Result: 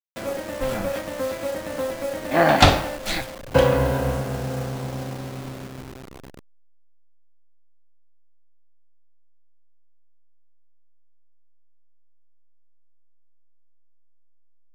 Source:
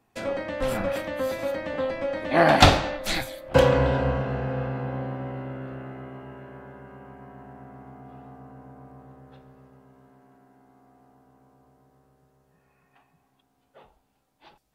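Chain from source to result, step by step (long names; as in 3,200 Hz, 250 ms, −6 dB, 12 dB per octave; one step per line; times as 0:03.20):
hold until the input has moved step −32.5 dBFS
level +1 dB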